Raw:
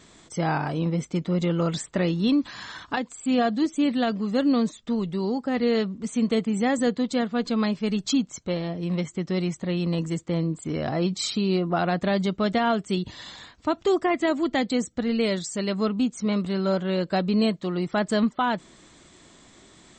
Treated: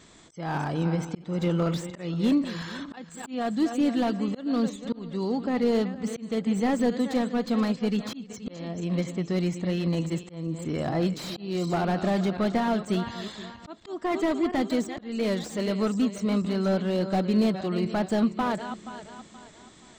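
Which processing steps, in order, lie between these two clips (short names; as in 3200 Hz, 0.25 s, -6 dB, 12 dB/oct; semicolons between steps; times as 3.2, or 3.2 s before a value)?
regenerating reverse delay 0.238 s, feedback 59%, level -12.5 dB; auto swell 0.302 s; slew limiter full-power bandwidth 64 Hz; gain -1 dB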